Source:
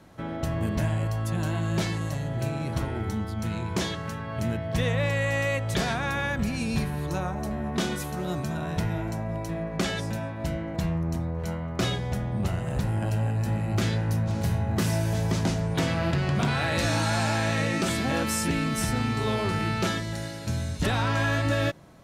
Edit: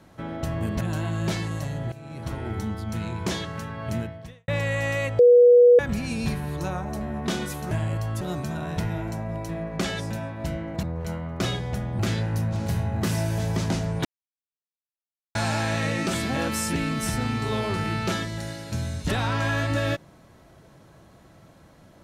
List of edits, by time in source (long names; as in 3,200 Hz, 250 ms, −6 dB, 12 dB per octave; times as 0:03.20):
0:00.81–0:01.31: move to 0:08.21
0:02.42–0:03.01: fade in, from −18.5 dB
0:04.47–0:04.98: fade out quadratic
0:05.69–0:06.29: beep over 486 Hz −10 dBFS
0:10.83–0:11.22: remove
0:12.38–0:13.74: remove
0:15.80–0:17.10: silence